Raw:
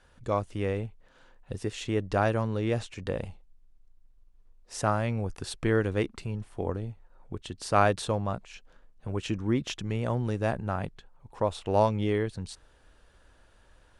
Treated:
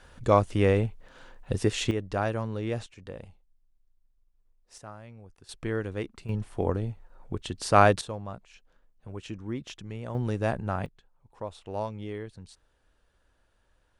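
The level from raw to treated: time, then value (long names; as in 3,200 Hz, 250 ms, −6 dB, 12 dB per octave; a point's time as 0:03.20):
+7.5 dB
from 0:01.91 −3 dB
from 0:02.86 −9.5 dB
from 0:04.78 −18 dB
from 0:05.49 −5.5 dB
from 0:06.29 +4 dB
from 0:08.01 −7.5 dB
from 0:10.15 +0.5 dB
from 0:10.86 −9.5 dB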